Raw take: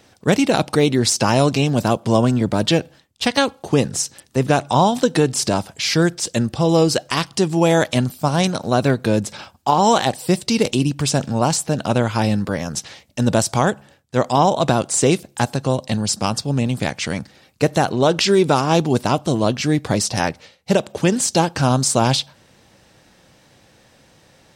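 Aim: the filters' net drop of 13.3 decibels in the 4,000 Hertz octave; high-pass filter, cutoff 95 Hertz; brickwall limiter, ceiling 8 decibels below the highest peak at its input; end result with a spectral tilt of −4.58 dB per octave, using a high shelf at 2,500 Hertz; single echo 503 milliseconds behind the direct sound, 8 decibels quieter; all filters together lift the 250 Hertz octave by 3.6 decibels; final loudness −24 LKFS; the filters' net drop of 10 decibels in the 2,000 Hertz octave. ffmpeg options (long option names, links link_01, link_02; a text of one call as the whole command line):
ffmpeg -i in.wav -af "highpass=95,equalizer=frequency=250:width_type=o:gain=5,equalizer=frequency=2000:width_type=o:gain=-8.5,highshelf=frequency=2500:gain=-7.5,equalizer=frequency=4000:width_type=o:gain=-8,alimiter=limit=-10dB:level=0:latency=1,aecho=1:1:503:0.398,volume=-2.5dB" out.wav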